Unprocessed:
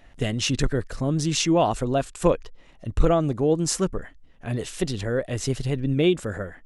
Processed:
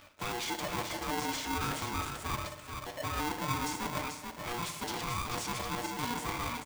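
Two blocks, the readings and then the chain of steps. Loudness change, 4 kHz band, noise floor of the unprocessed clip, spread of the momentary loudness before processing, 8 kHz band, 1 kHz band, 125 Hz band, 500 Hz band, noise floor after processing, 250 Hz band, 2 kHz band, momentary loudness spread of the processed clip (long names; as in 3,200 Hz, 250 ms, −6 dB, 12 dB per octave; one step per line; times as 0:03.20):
−11.0 dB, −7.0 dB, −52 dBFS, 9 LU, −8.5 dB, −3.5 dB, −15.0 dB, −17.5 dB, −49 dBFS, −14.5 dB, −2.0 dB, 5 LU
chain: de-essing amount 60%
bass and treble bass −13 dB, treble −3 dB
notch filter 630 Hz, Q 18
reversed playback
downward compressor 5 to 1, threshold −36 dBFS, peak gain reduction 18 dB
reversed playback
leveller curve on the samples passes 3
on a send: single-tap delay 438 ms −6 dB
on the sum: feedback delay network reverb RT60 1.1 s, low-frequency decay 0.95×, high-frequency decay 0.8×, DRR 6.5 dB
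ring modulator with a square carrier 600 Hz
level −6.5 dB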